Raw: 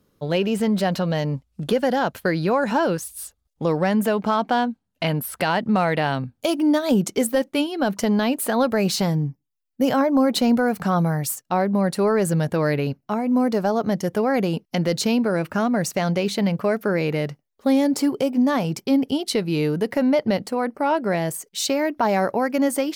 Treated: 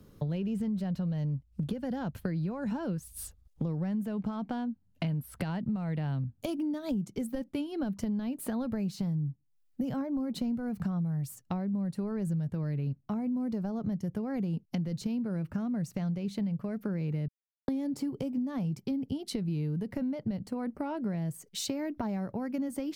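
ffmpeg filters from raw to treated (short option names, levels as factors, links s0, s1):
-filter_complex "[0:a]asplit=3[s0][s1][s2];[s0]atrim=end=17.28,asetpts=PTS-STARTPTS,afade=t=out:st=17.276:d=0.004:c=hsin[s3];[s1]atrim=start=17.28:end=17.68,asetpts=PTS-STARTPTS,volume=0[s4];[s2]atrim=start=17.68,asetpts=PTS-STARTPTS,afade=t=in:d=0.004:c=hsin[s5];[s3][s4][s5]concat=n=3:v=0:a=1,acrossover=split=200[s6][s7];[s7]acompressor=threshold=0.00126:ratio=1.5[s8];[s6][s8]amix=inputs=2:normalize=0,lowshelf=f=260:g=10,acompressor=threshold=0.02:ratio=6,volume=1.41"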